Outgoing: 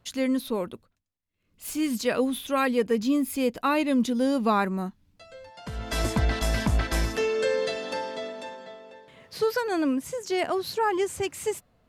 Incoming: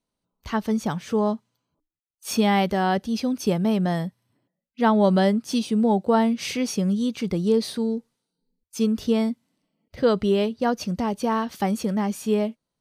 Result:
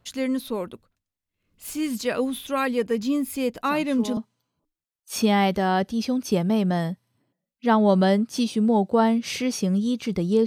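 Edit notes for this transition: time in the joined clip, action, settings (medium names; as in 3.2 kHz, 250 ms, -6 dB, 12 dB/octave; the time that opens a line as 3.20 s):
outgoing
3.64 s: add incoming from 0.79 s 0.53 s -12 dB
4.17 s: go over to incoming from 1.32 s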